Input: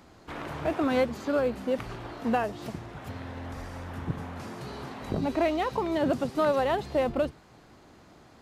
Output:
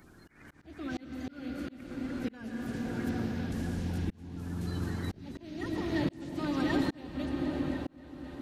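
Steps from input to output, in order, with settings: bin magnitudes rounded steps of 30 dB; band shelf 750 Hz -12.5 dB; soft clip -20.5 dBFS, distortion -24 dB; repeats that get brighter 0.264 s, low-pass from 400 Hz, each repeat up 1 oct, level -6 dB; on a send at -3 dB: reverb RT60 4.0 s, pre-delay 0.104 s; on the sum: auto swell 0.738 s; gain +2 dB

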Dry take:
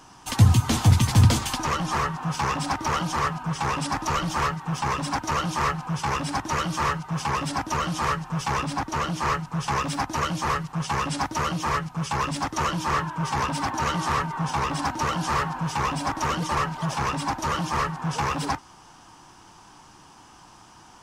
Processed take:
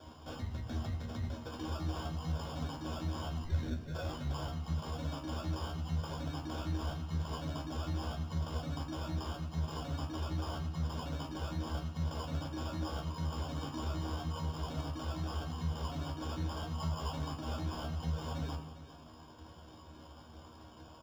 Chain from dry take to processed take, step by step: octaver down 1 oct, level -4 dB; reverb removal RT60 0.78 s; compressor 16:1, threshold -33 dBFS, peak gain reduction 25 dB; 3.44 tape start 0.97 s; limiter -29.5 dBFS, peak gain reduction 7.5 dB; 16.72–17.12 synth low-pass 1100 Hz, resonance Q 1.6; sample-and-hold 22×; resonator 79 Hz, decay 0.18 s, harmonics all, mix 90%; echo 0.402 s -13.5 dB; reverb RT60 1.0 s, pre-delay 3 ms, DRR 7 dB

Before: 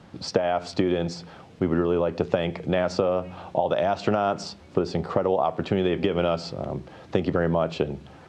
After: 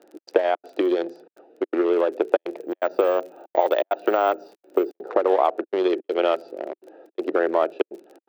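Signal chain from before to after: Wiener smoothing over 41 samples; LPF 5400 Hz 12 dB/oct; crackle 33/s -43 dBFS; step gate "xx.xxx.xxxxx" 165 bpm -60 dB; elliptic high-pass 330 Hz, stop band 80 dB; 2.58–5.01 careless resampling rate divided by 2×, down none, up hold; gain +5.5 dB

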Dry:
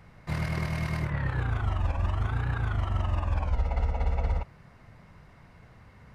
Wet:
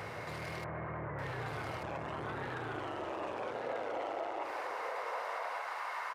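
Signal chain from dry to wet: soft clip -28.5 dBFS, distortion -10 dB; resonant low shelf 280 Hz -13 dB, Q 1.5; wavefolder -31.5 dBFS; 0.64–1.22 LPF 1700 Hz 24 dB/oct; limiter -49.5 dBFS, peak gain reduction 18 dB; high-pass sweep 110 Hz -> 1000 Hz, 1.22–4.9; echo 1.189 s -3.5 dB; gain +15 dB

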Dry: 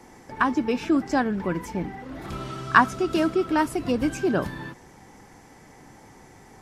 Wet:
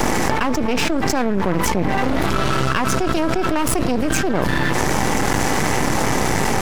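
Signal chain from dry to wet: half-wave rectifier; fast leveller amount 100%; gain -3.5 dB

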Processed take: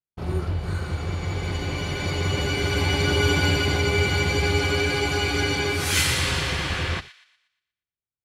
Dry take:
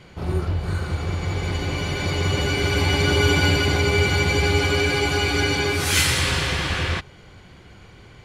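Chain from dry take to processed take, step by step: gate -33 dBFS, range -54 dB; on a send: thin delay 0.119 s, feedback 40%, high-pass 1800 Hz, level -13.5 dB; on the sum: gain -2.5 dB

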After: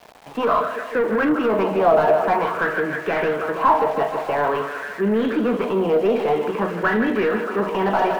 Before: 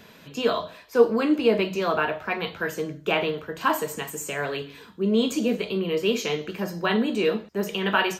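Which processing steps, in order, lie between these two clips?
tracing distortion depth 0.37 ms; on a send: thinning echo 0.157 s, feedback 78%, high-pass 160 Hz, level -13 dB; on the sum: limiter -15.5 dBFS, peak gain reduction 9.5 dB; Gaussian blur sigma 2.3 samples; overdrive pedal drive 16 dB, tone 1200 Hz, clips at -15.5 dBFS; dynamic EQ 250 Hz, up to +5 dB, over -38 dBFS, Q 0.81; sample gate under -41 dBFS; LFO bell 0.49 Hz 690–1800 Hz +13 dB

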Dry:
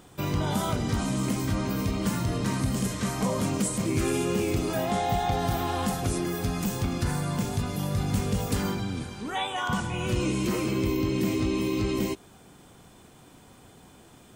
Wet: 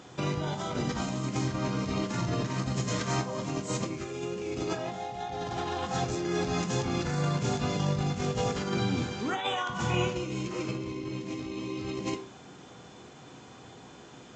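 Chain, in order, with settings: HPF 81 Hz; low shelf 170 Hz -4.5 dB; negative-ratio compressor -32 dBFS, ratio -0.5; reverb RT60 0.45 s, pre-delay 3 ms, DRR 5.5 dB; A-law 128 kbps 16000 Hz

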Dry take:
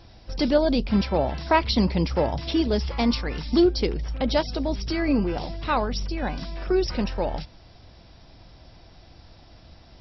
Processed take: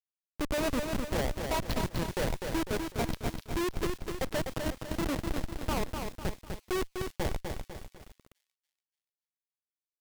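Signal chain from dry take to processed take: HPF 370 Hz 12 dB/oct; high shelf 2900 Hz -8.5 dB; on a send at -23 dB: reverb RT60 4.5 s, pre-delay 27 ms; on the sum: dynamic EQ 1900 Hz, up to +3 dB, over -48 dBFS, Q 2.9; Schmitt trigger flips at -24 dBFS; thin delay 0.288 s, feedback 43%, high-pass 3100 Hz, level -13 dB; lo-fi delay 0.25 s, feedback 55%, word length 8-bit, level -4.5 dB

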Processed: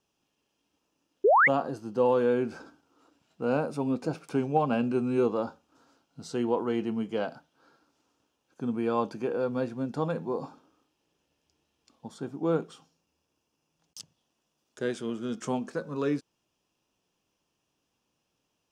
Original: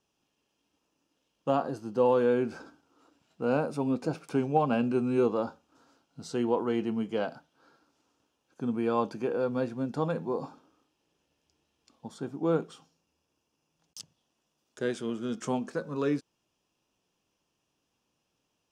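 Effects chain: painted sound rise, 1.24–1.48, 360–2300 Hz -19 dBFS

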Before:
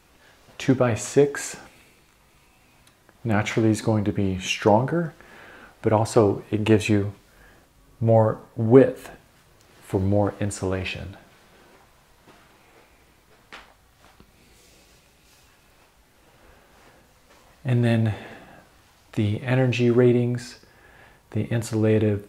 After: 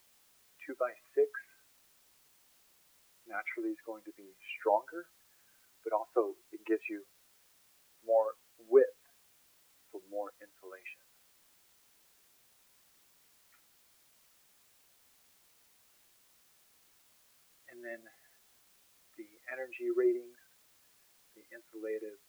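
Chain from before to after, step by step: per-bin expansion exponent 2; Chebyshev band-pass 350–2400 Hz, order 4; requantised 10-bit, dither triangular; gain -6.5 dB

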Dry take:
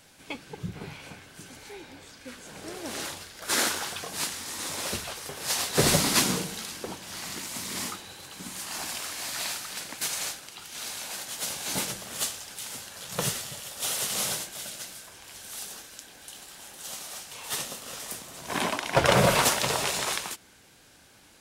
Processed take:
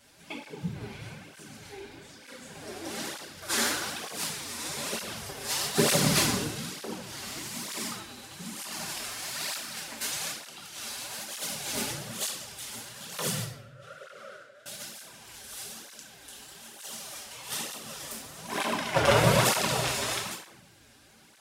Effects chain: 13.44–14.66 double band-pass 880 Hz, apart 1.3 oct; shoebox room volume 250 m³, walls mixed, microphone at 1.2 m; tape flanging out of phase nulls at 1.1 Hz, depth 6.6 ms; gain -1.5 dB

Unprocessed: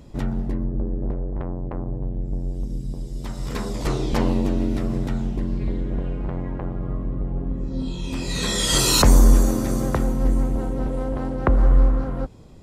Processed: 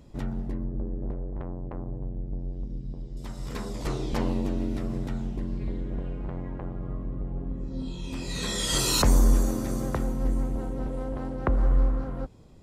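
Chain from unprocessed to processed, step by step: 2.03–3.17 air absorption 180 m; gain -6.5 dB

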